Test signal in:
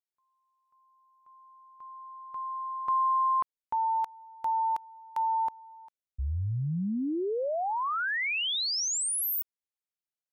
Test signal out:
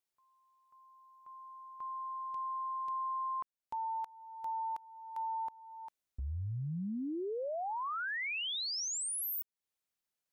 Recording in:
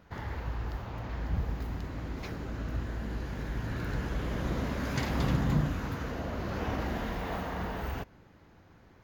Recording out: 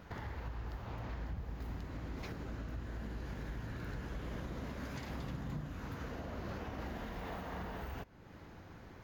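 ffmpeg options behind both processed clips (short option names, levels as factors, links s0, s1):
-af "acompressor=threshold=0.00891:ratio=6:attack=0.11:release=708:knee=1:detection=peak,volume=1.68"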